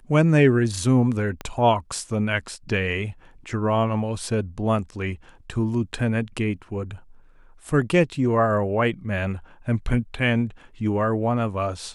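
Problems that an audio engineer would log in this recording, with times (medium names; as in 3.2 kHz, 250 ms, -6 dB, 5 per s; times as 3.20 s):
1.41 s: pop -17 dBFS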